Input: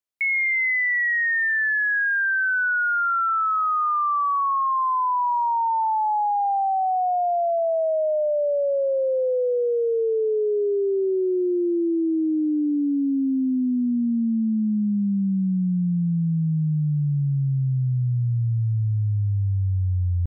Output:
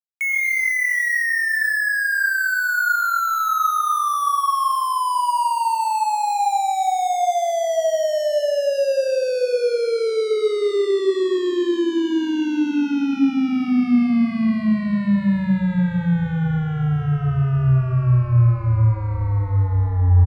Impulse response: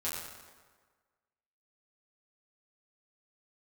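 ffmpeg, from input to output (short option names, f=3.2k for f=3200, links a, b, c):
-filter_complex "[0:a]acrusher=bits=4:mix=0:aa=0.5,asplit=6[a][b][c][d][e][f];[b]adelay=209,afreqshift=-35,volume=-19.5dB[g];[c]adelay=418,afreqshift=-70,volume=-24.2dB[h];[d]adelay=627,afreqshift=-105,volume=-29dB[i];[e]adelay=836,afreqshift=-140,volume=-33.7dB[j];[f]adelay=1045,afreqshift=-175,volume=-38.4dB[k];[a][g][h][i][j][k]amix=inputs=6:normalize=0,asplit=2[l][m];[1:a]atrim=start_sample=2205,lowshelf=f=220:g=9.5,adelay=99[n];[m][n]afir=irnorm=-1:irlink=0,volume=-9.5dB[o];[l][o]amix=inputs=2:normalize=0"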